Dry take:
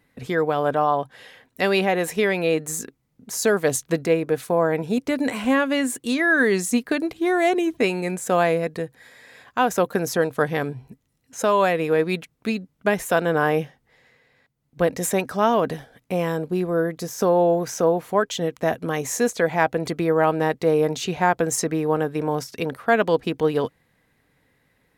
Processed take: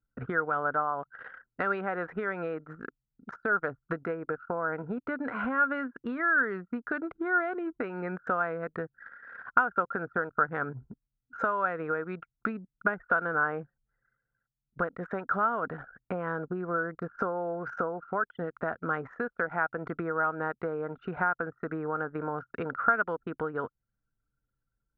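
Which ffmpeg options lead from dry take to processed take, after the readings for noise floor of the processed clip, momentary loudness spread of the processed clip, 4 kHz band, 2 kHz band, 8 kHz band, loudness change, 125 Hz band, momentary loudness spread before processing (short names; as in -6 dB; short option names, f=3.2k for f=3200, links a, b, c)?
under -85 dBFS, 10 LU, under -25 dB, -4.0 dB, under -40 dB, -9.0 dB, -12.0 dB, 8 LU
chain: -af "acompressor=threshold=-29dB:ratio=12,lowpass=f=1.4k:t=q:w=14,anlmdn=0.398,volume=-2dB"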